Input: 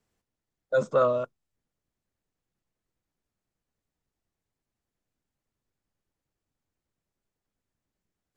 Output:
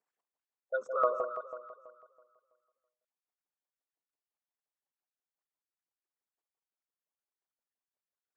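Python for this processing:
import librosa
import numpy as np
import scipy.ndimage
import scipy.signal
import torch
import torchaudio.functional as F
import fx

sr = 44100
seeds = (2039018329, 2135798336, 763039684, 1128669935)

y = fx.envelope_sharpen(x, sr, power=2.0)
y = fx.filter_lfo_highpass(y, sr, shape='saw_up', hz=5.8, low_hz=740.0, high_hz=1700.0, q=1.4)
y = fx.echo_alternate(y, sr, ms=164, hz=1100.0, feedback_pct=55, wet_db=-5.0)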